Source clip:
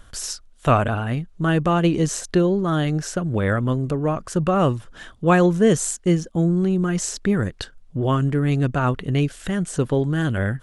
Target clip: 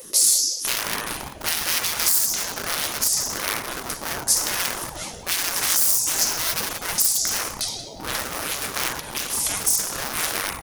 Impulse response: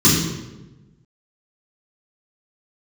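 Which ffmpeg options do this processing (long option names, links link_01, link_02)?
-filter_complex "[0:a]asplit=2[link_01][link_02];[link_02]adelay=182,lowpass=frequency=4300:poles=1,volume=-19.5dB,asplit=2[link_03][link_04];[link_04]adelay=182,lowpass=frequency=4300:poles=1,volume=0.39,asplit=2[link_05][link_06];[link_06]adelay=182,lowpass=frequency=4300:poles=1,volume=0.39[link_07];[link_01][link_03][link_05][link_07]amix=inputs=4:normalize=0,asplit=2[link_08][link_09];[1:a]atrim=start_sample=2205,highshelf=frequency=5600:gain=8[link_10];[link_09][link_10]afir=irnorm=-1:irlink=0,volume=-25.5dB[link_11];[link_08][link_11]amix=inputs=2:normalize=0,aeval=exprs='0.266*(abs(mod(val(0)/0.266+3,4)-2)-1)':channel_layout=same,equalizer=frequency=5700:width_type=o:width=0.74:gain=13.5,aexciter=amount=6.1:drive=8.7:freq=9600,asoftclip=type=tanh:threshold=-1.5dB,afftfilt=real='re*lt(hypot(re,im),0.282)':imag='im*lt(hypot(re,im),0.282)':win_size=1024:overlap=0.75,alimiter=limit=-11.5dB:level=0:latency=1:release=255,crystalizer=i=4.5:c=0,highshelf=frequency=8900:gain=-10.5,atempo=1,aeval=exprs='val(0)*sin(2*PI*420*n/s+420*0.35/5.3*sin(2*PI*5.3*n/s))':channel_layout=same,volume=-1.5dB"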